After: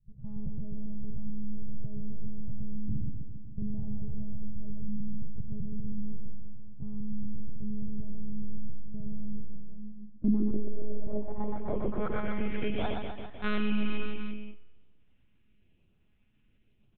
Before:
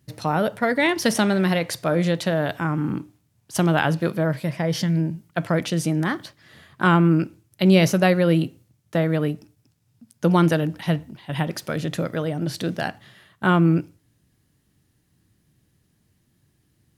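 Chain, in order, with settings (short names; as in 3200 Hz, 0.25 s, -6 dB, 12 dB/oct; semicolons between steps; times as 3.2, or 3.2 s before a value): FFT order left unsorted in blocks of 16 samples; monotone LPC vocoder at 8 kHz 210 Hz; LFO notch saw up 1 Hz 240–2800 Hz; on a send: reverse bouncing-ball echo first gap 0.12 s, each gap 1.1×, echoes 5; on the sum: Schroeder reverb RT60 1.3 s, combs from 31 ms, DRR 18.5 dB; 10.51–11.07 sample leveller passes 3; limiter -13 dBFS, peak gain reduction 10 dB; low-pass sweep 130 Hz -> 2600 Hz, 9.48–12.8; gain -6 dB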